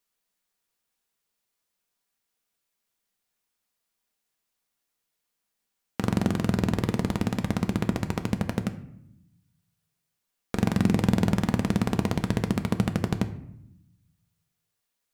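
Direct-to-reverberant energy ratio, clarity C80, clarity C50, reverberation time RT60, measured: 7.0 dB, 15.5 dB, 13.0 dB, 0.75 s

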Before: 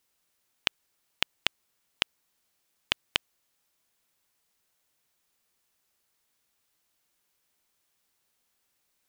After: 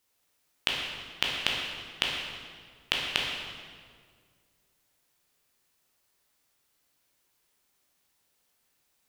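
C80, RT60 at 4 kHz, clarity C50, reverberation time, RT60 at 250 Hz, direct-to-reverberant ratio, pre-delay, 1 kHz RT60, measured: 2.5 dB, 1.4 s, 0.5 dB, 1.9 s, 2.2 s, -2.5 dB, 12 ms, 1.7 s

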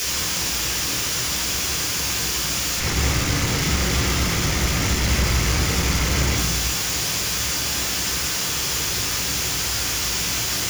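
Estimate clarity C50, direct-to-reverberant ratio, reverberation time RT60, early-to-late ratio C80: 4.5 dB, -2.0 dB, 1.2 s, 8.0 dB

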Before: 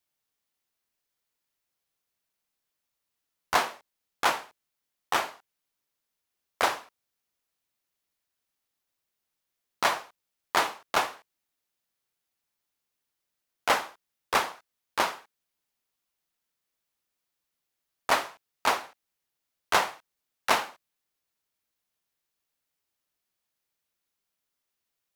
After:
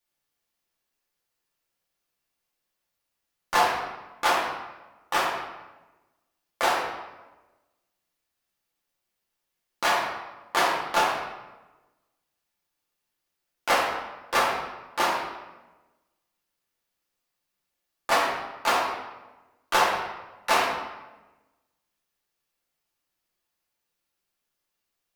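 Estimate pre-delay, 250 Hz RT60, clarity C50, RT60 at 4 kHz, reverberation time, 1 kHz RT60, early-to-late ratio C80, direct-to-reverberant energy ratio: 3 ms, 1.3 s, 2.5 dB, 0.80 s, 1.1 s, 1.1 s, 4.5 dB, -5.5 dB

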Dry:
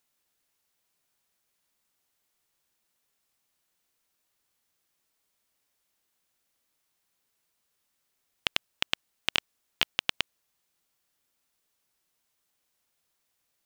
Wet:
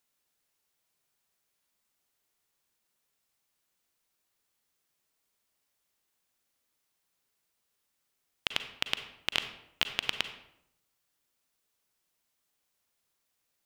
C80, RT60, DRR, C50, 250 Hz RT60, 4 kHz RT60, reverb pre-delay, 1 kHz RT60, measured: 12.5 dB, 0.75 s, 8.5 dB, 9.5 dB, 0.85 s, 0.50 s, 36 ms, 0.75 s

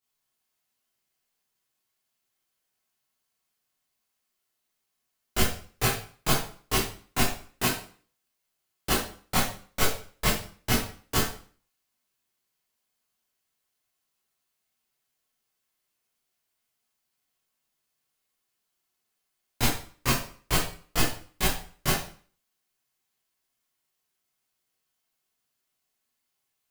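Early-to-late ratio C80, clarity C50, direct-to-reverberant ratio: 9.0 dB, 3.5 dB, -9.5 dB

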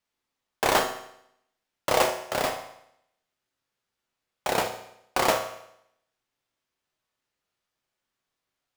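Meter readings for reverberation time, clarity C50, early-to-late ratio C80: 0.75 s, 9.0 dB, 11.5 dB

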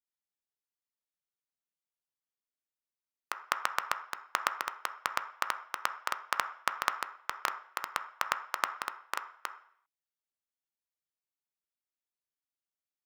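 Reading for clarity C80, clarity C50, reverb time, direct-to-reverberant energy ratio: 15.5 dB, 12.0 dB, 0.60 s, 8.0 dB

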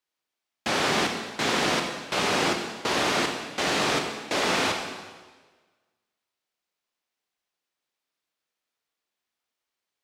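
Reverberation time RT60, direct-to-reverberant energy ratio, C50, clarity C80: 1.4 s, 3.5 dB, 4.5 dB, 6.5 dB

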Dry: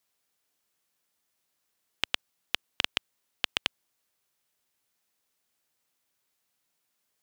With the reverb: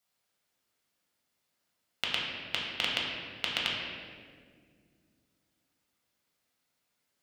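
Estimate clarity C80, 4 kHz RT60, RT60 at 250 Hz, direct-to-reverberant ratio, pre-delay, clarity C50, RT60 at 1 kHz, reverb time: 2.0 dB, 1.2 s, 3.2 s, -4.0 dB, 5 ms, 0.5 dB, 1.5 s, 1.9 s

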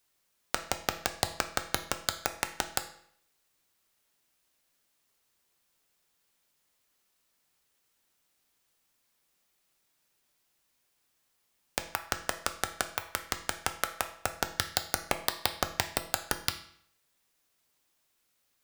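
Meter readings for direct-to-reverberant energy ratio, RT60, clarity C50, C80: 7.0 dB, 0.65 s, 11.5 dB, 15.0 dB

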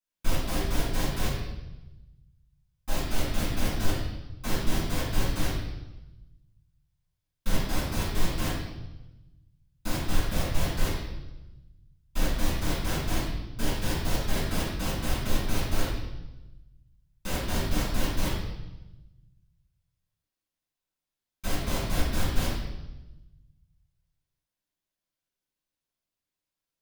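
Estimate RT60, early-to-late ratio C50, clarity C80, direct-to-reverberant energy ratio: 1.0 s, 0.5 dB, 4.0 dB, -10.0 dB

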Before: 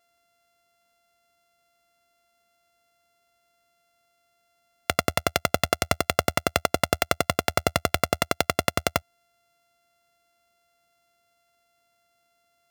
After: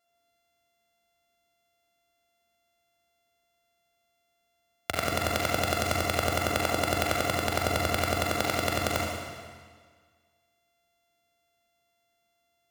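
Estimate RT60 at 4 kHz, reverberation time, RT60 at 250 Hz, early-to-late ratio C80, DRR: 1.6 s, 1.7 s, 1.7 s, 2.0 dB, -3.0 dB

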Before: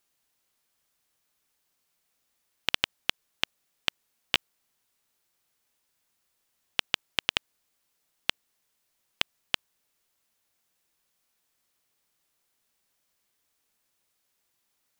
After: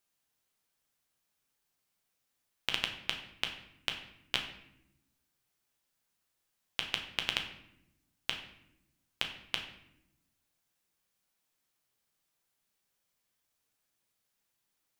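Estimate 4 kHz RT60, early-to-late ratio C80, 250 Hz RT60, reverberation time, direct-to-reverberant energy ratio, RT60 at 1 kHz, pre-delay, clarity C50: 0.55 s, 11.0 dB, 1.4 s, 0.85 s, 3.0 dB, 0.70 s, 8 ms, 8.5 dB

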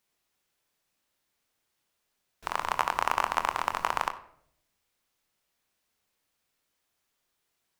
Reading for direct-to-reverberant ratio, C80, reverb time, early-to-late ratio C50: 7.5 dB, 16.5 dB, 0.65 s, 13.5 dB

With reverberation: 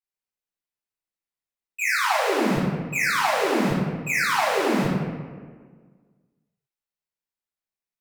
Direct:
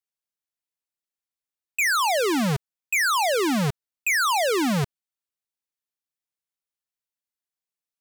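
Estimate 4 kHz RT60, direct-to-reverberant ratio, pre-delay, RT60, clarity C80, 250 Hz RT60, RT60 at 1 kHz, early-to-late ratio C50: 0.90 s, -14.0 dB, 3 ms, 1.6 s, 0.5 dB, 1.9 s, 1.4 s, -2.0 dB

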